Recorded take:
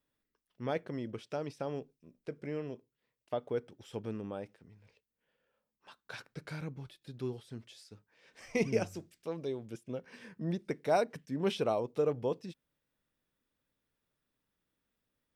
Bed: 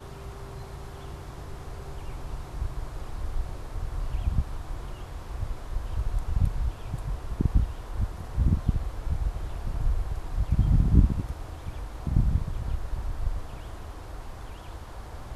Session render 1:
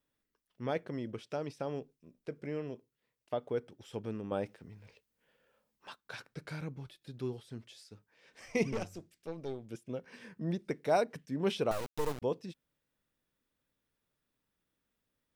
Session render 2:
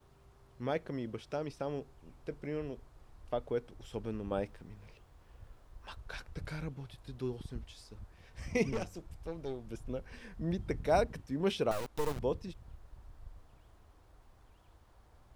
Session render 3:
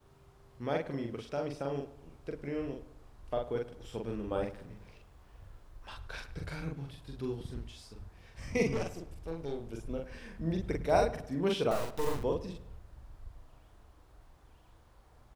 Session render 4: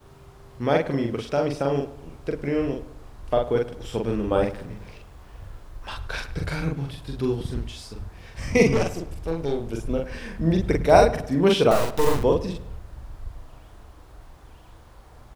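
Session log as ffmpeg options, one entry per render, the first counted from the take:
-filter_complex "[0:a]asettb=1/sr,asplit=3[a][b][c];[a]atrim=end=4.314[d];[b]atrim=start=4.31:end=5.96,asetpts=PTS-STARTPTS,afade=t=in:d=0.004:c=qsin,afade=t=out:st=1.646:d=0.004:c=qsin,acontrast=69[e];[c]atrim=start=5.956[f];[d][e]acrossfade=d=0.004:c1=hsin:c2=qsin[g];[g][f]acrossfade=d=0.004:c1=qsin:c2=hsin,asettb=1/sr,asplit=3[h][i][j];[h]atrim=end=8.724[k];[i]atrim=start=8.72:end=9.7,asetpts=PTS-STARTPTS,afade=t=in:d=0.004:c=qsin,afade=t=out:st=0.976:d=0.004:c=qsin,aeval=exprs='(tanh(35.5*val(0)+0.65)-tanh(0.65))/35.5':c=same[l];[j]atrim=start=9.696[m];[k][l]acrossfade=d=0.004:c1=hsin:c2=qsin[n];[n][m]acrossfade=d=0.004:c1=qsin:c2=hsin,asettb=1/sr,asplit=3[o][p][q];[o]atrim=end=11.714[r];[p]atrim=start=11.71:end=12.22,asetpts=PTS-STARTPTS,afade=t=in:d=0.004:c=qsin,afade=t=out:st=0.506:d=0.004:c=qsin,acrusher=bits=4:dc=4:mix=0:aa=0.000001[s];[q]atrim=start=12.216[t];[r][s]acrossfade=d=0.004:c1=hsin:c2=qsin[u];[u][t]acrossfade=d=0.004:c1=qsin:c2=hsin"
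-filter_complex "[1:a]volume=-21.5dB[a];[0:a][a]amix=inputs=2:normalize=0"
-filter_complex "[0:a]asplit=2[a][b];[b]adelay=43,volume=-2.5dB[c];[a][c]amix=inputs=2:normalize=0,asplit=2[d][e];[e]adelay=105,lowpass=f=3.1k:p=1,volume=-15.5dB,asplit=2[f][g];[g]adelay=105,lowpass=f=3.1k:p=1,volume=0.43,asplit=2[h][i];[i]adelay=105,lowpass=f=3.1k:p=1,volume=0.43,asplit=2[j][k];[k]adelay=105,lowpass=f=3.1k:p=1,volume=0.43[l];[d][f][h][j][l]amix=inputs=5:normalize=0"
-af "volume=12dB"

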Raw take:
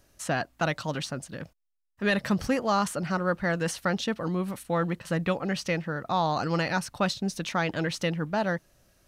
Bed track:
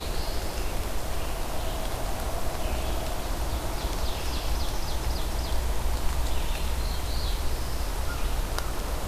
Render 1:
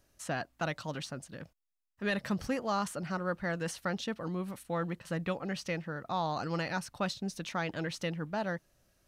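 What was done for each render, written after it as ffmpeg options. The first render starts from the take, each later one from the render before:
-af "volume=-7dB"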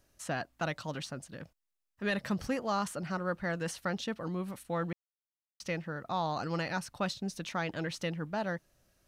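-filter_complex "[0:a]asplit=3[a][b][c];[a]atrim=end=4.93,asetpts=PTS-STARTPTS,afade=t=out:st=4.926:d=0.004:c=hsin[d];[b]atrim=start=4.93:end=5.6,asetpts=PTS-STARTPTS,volume=0[e];[c]atrim=start=5.6,asetpts=PTS-STARTPTS,afade=t=in:d=0.004:c=hsin[f];[d][e][f]concat=n=3:v=0:a=1"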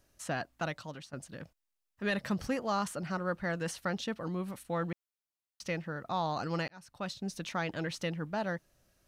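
-filter_complex "[0:a]asplit=3[a][b][c];[a]atrim=end=1.13,asetpts=PTS-STARTPTS,afade=t=out:st=0.55:d=0.58:silence=0.237137[d];[b]atrim=start=1.13:end=6.68,asetpts=PTS-STARTPTS,afade=t=in:d=0.004:c=hsin:silence=0.237137,afade=t=out:st=5.546:d=0.004:c=hsin[e];[c]atrim=start=6.68,asetpts=PTS-STARTPTS,afade=t=in:d=0.65[f];[d][e][f]concat=n=3:v=0:a=1"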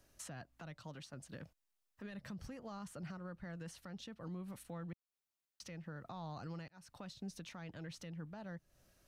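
-filter_complex "[0:a]acrossover=split=170[a][b];[b]acompressor=threshold=-46dB:ratio=3[c];[a][c]amix=inputs=2:normalize=0,alimiter=level_in=14dB:limit=-24dB:level=0:latency=1:release=312,volume=-14dB"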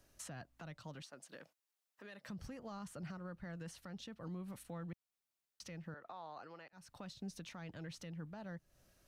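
-filter_complex "[0:a]asettb=1/sr,asplit=3[a][b][c];[a]atrim=end=1.024[d];[b]atrim=start=1.02:end=2.29,asetpts=PTS-STARTPTS,afade=t=in:d=0.004:c=qsin,afade=t=out:st=1.266:d=0.004:c=qsin,highpass=370[e];[c]atrim=start=2.286[f];[d][e]acrossfade=d=0.004:c1=hsin:c2=qsin[g];[g][f]acrossfade=d=0.004:c1=qsin:c2=hsin,asettb=1/sr,asplit=3[h][i][j];[h]atrim=end=5.944[k];[i]atrim=start=5.94:end=6.73,asetpts=PTS-STARTPTS,afade=t=in:d=0.004:c=qsin,afade=t=out:st=0.786:d=0.004:c=qsin,acrossover=split=350 3600:gain=0.0708 1 0.224[l][m][n];[l][m][n]amix=inputs=3:normalize=0[o];[j]atrim=start=6.726[p];[k][o]acrossfade=d=0.004:c1=hsin:c2=qsin[q];[q][p]acrossfade=d=0.004:c1=qsin:c2=hsin"

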